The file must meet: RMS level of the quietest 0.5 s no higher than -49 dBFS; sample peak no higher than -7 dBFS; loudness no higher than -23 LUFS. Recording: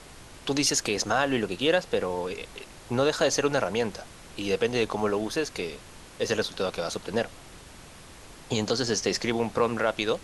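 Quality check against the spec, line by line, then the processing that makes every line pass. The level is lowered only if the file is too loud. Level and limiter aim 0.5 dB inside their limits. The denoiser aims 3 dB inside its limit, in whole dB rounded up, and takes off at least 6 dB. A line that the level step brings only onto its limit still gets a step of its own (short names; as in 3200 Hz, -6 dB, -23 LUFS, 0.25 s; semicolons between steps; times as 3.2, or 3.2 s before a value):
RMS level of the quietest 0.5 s -47 dBFS: fail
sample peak -9.0 dBFS: OK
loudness -27.5 LUFS: OK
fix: denoiser 6 dB, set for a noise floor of -47 dBFS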